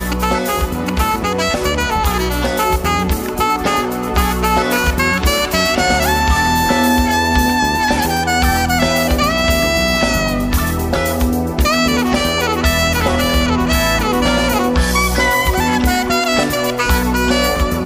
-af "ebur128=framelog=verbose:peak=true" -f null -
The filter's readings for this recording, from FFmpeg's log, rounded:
Integrated loudness:
  I:         -14.9 LUFS
  Threshold: -24.9 LUFS
Loudness range:
  LRA:         2.5 LU
  Threshold: -34.7 LUFS
  LRA low:   -16.3 LUFS
  LRA high:  -13.8 LUFS
True peak:
  Peak:       -2.6 dBFS